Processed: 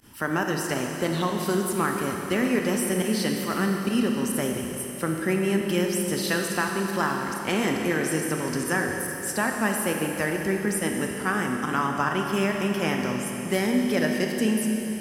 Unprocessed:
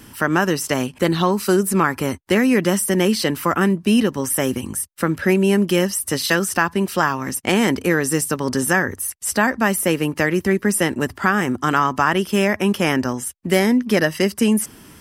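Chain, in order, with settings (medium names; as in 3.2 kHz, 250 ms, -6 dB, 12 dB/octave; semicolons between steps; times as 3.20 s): volume shaper 139 bpm, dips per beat 1, -21 dB, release 70 ms; Schroeder reverb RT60 3.6 s, combs from 25 ms, DRR 1.5 dB; trim -8.5 dB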